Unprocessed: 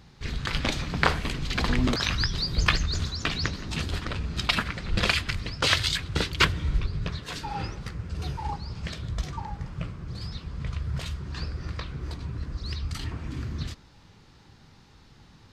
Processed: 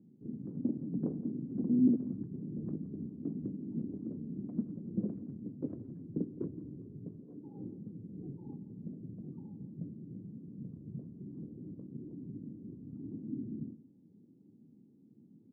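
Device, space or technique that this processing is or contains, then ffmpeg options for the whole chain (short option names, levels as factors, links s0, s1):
the neighbour's flat through the wall: -filter_complex "[0:a]asettb=1/sr,asplit=3[s0][s1][s2];[s0]atrim=end=6.304[s3];[s1]atrim=start=6.3:end=7.63,asetpts=PTS-STARTPTS,afade=t=in:d=0.004:c=qsin,afade=t=out:st=1.326:d=0.004:c=qsin,equalizer=f=190:t=o:w=0.95:g=-6.5[s4];[s2]atrim=start=7.626[s5];[s3][s4]acrossfade=d=0.004:c1=hsin:c2=qsin[s6];[s6][s5]acrossfade=d=0.004:c1=qsin:c2=hsin,lowpass=f=240:w=0.5412,lowpass=f=240:w=1.3066,highpass=f=260:w=0.5412,highpass=f=260:w=1.3066,equalizer=f=110:t=o:w=0.45:g=4,aecho=1:1:170:0.133,volume=3.16"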